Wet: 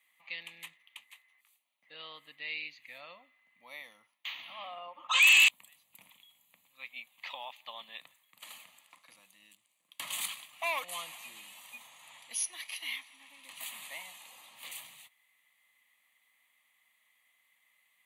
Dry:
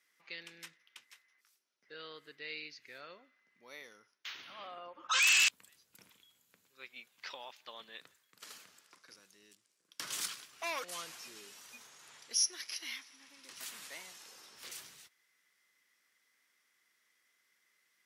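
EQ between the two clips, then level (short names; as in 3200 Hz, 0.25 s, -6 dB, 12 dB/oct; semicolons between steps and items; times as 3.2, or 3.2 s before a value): HPF 310 Hz 6 dB/oct; fixed phaser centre 1500 Hz, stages 6; +7.0 dB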